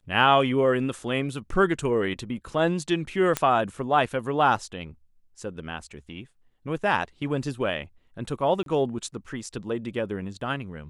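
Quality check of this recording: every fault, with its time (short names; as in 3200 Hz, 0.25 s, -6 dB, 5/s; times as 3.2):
3.37 pop -8 dBFS
8.63–8.66 gap 32 ms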